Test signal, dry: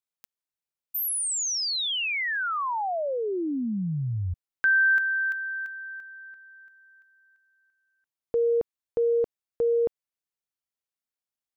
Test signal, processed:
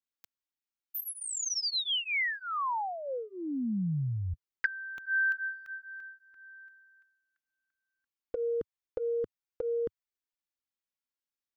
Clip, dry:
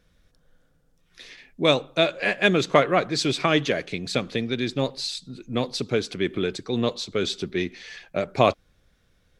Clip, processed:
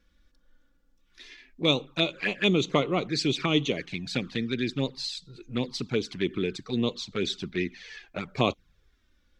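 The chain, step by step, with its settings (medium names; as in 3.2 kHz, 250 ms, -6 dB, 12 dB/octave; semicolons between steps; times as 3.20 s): fifteen-band graphic EQ 100 Hz -4 dB, 630 Hz -9 dB, 10 kHz -9 dB; touch-sensitive flanger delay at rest 3.6 ms, full sweep at -21 dBFS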